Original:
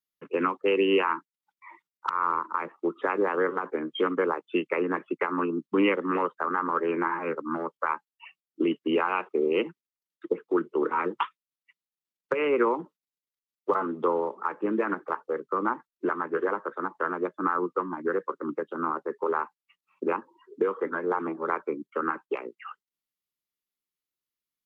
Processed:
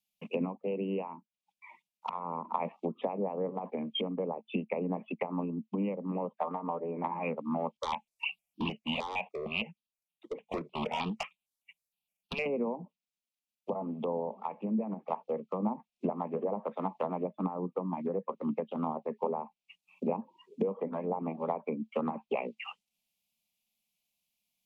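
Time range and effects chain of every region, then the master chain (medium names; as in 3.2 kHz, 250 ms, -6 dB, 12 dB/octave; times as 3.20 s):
6.37–7.04 s: low-pass that closes with the level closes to 530 Hz, closed at -22.5 dBFS + high-pass 410 Hz 6 dB/octave + comb 6.6 ms, depth 46%
7.77–12.46 s: overload inside the chain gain 24.5 dB + stepped phaser 6.5 Hz 690–2100 Hz
whole clip: low-pass that closes with the level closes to 650 Hz, closed at -23 dBFS; FFT filter 130 Hz 0 dB, 220 Hz +9 dB, 330 Hz -15 dB, 700 Hz +6 dB, 1.1 kHz -8 dB, 1.5 kHz -26 dB, 2.4 kHz +8 dB, 4.2 kHz +3 dB; gain riding 0.5 s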